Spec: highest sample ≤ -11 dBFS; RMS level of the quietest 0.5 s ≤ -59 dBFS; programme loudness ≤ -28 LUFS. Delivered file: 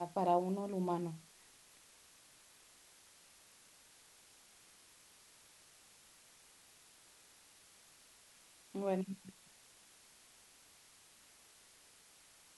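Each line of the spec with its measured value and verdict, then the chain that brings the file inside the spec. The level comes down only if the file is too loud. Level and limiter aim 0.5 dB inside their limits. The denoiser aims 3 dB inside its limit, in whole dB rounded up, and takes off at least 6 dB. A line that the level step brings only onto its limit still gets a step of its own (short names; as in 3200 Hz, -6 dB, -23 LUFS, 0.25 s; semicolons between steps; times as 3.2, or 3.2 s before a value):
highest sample -20.0 dBFS: OK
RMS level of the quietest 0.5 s -64 dBFS: OK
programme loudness -38.0 LUFS: OK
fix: none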